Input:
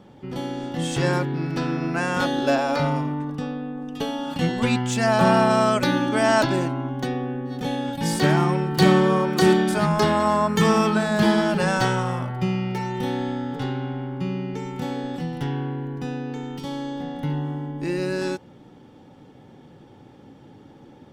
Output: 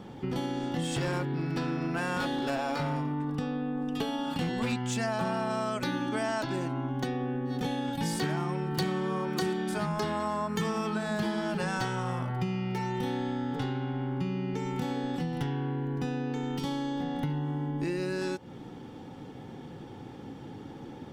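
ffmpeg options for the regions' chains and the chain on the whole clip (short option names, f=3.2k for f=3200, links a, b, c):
-filter_complex "[0:a]asettb=1/sr,asplit=3[a][b][c];[a]atrim=end=0.814[d];[b]atrim=start=0.81:end=4.73,asetpts=PTS-STARTPTS,afade=t=in:d=0.004:c=qsin,afade=t=out:st=3.916:d=0.004:c=qsin,asoftclip=type=hard:threshold=-19dB,bandreject=f=6.2k:w=12[e];[c]atrim=start=4.726[f];[d][e]acrossfade=d=0.004:c1=hsin:c2=qsin[g];[g][f]acrossfade=d=0.004:c1=qsin:c2=hsin,bandreject=f=580:w=12,acompressor=threshold=-33dB:ratio=6,volume=4dB"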